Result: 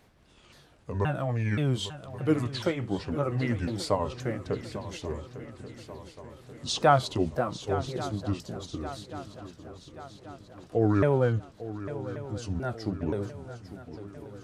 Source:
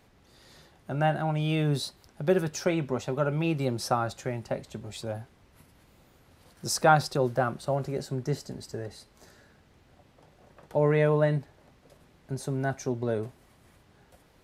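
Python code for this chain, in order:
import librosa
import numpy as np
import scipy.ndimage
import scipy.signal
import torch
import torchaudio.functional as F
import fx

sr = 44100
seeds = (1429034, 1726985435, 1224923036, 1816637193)

y = fx.pitch_ramps(x, sr, semitones=-8.0, every_ms=525)
y = fx.echo_swing(y, sr, ms=1134, ratio=3, feedback_pct=52, wet_db=-13.5)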